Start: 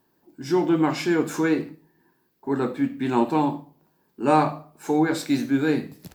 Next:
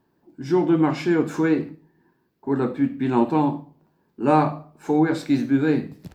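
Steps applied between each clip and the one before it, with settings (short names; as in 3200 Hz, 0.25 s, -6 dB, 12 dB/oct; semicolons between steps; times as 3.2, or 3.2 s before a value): LPF 3200 Hz 6 dB/oct; low shelf 240 Hz +5.5 dB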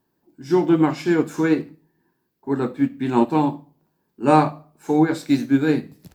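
high shelf 5300 Hz +11.5 dB; upward expander 1.5:1, over -31 dBFS; gain +3 dB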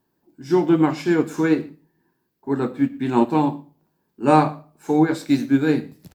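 echo 0.119 s -23 dB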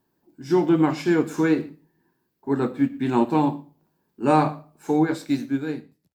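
ending faded out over 1.33 s; in parallel at -1 dB: limiter -12 dBFS, peak gain reduction 10.5 dB; on the sum: gain -6 dB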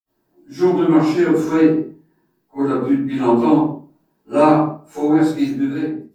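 reverb, pre-delay 50 ms; gain -1 dB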